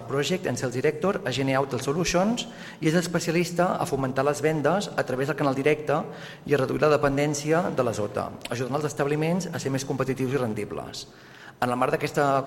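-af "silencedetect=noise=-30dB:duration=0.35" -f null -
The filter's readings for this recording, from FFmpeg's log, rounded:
silence_start: 11.02
silence_end: 11.62 | silence_duration: 0.60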